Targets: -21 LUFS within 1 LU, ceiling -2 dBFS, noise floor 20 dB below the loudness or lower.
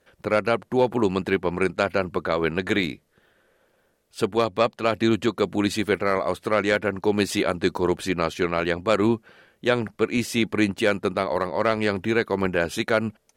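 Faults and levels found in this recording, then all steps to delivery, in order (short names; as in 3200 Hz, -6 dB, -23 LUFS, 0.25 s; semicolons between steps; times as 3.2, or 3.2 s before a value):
loudness -24.0 LUFS; peak -8.0 dBFS; loudness target -21.0 LUFS
-> gain +3 dB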